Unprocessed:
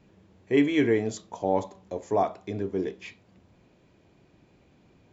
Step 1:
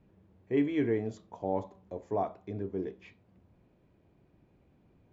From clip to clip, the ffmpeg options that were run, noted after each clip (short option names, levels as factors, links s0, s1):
-af "lowpass=f=1500:p=1,lowshelf=f=110:g=6,volume=0.473"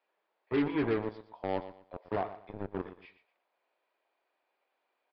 -filter_complex "[0:a]acrossover=split=620[s0][s1];[s0]acrusher=bits=4:mix=0:aa=0.5[s2];[s2][s1]amix=inputs=2:normalize=0,aecho=1:1:119|238|357:0.211|0.055|0.0143,aresample=11025,aresample=44100,volume=0.841"